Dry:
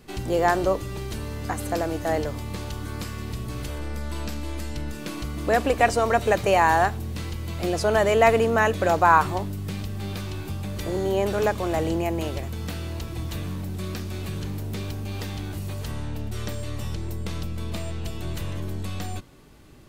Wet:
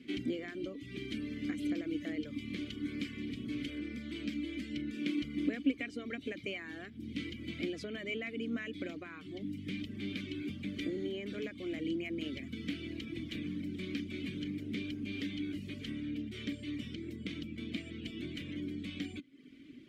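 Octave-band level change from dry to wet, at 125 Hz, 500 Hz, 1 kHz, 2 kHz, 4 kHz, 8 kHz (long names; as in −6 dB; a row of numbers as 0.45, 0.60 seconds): −17.5 dB, −19.5 dB, −35.5 dB, −14.5 dB, −7.5 dB, below −20 dB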